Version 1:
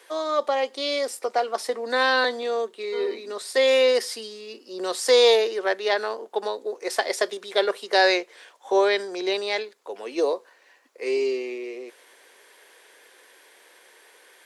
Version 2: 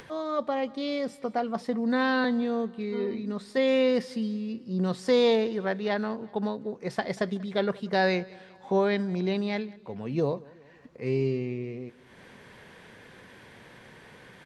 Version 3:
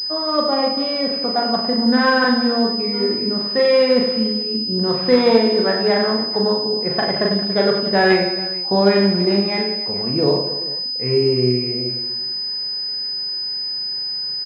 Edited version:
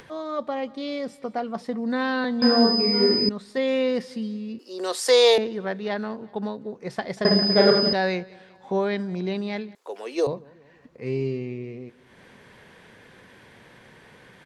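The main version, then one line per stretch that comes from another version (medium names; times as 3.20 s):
2
2.42–3.29 s: from 3
4.59–5.38 s: from 1
7.25–7.93 s: from 3
9.75–10.27 s: from 1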